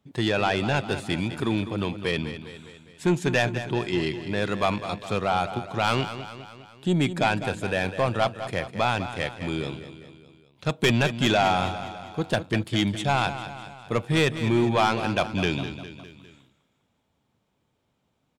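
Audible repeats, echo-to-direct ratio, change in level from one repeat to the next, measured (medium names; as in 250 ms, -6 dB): 4, -10.0 dB, -5.0 dB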